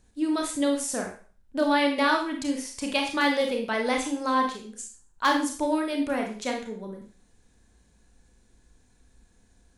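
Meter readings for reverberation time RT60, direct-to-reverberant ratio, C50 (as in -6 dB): 0.40 s, 1.5 dB, 6.0 dB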